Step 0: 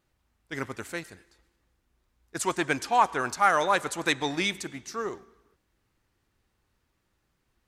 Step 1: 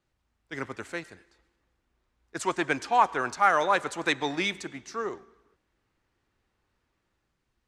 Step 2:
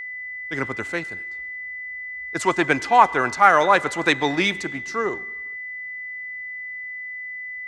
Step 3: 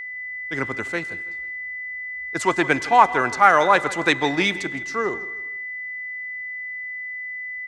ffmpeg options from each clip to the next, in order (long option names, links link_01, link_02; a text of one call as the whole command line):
ffmpeg -i in.wav -filter_complex "[0:a]acrossover=split=250|3100[link_01][link_02][link_03];[link_02]dynaudnorm=framelen=100:gausssize=11:maxgain=4dB[link_04];[link_01][link_04][link_03]amix=inputs=3:normalize=0,lowpass=8300,volume=-3.5dB" out.wav
ffmpeg -i in.wav -af "bass=frequency=250:gain=2,treble=frequency=4000:gain=-3,aeval=exprs='val(0)+0.0126*sin(2*PI*2000*n/s)':channel_layout=same,volume=7.5dB" out.wav
ffmpeg -i in.wav -af "aecho=1:1:163|326|489:0.126|0.0441|0.0154" out.wav